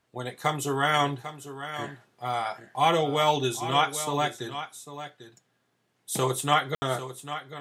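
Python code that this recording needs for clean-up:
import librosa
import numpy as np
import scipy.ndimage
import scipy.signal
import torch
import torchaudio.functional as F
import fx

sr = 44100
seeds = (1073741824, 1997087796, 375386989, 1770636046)

y = fx.fix_ambience(x, sr, seeds[0], print_start_s=5.57, print_end_s=6.07, start_s=6.75, end_s=6.82)
y = fx.fix_echo_inverse(y, sr, delay_ms=797, level_db=-12.0)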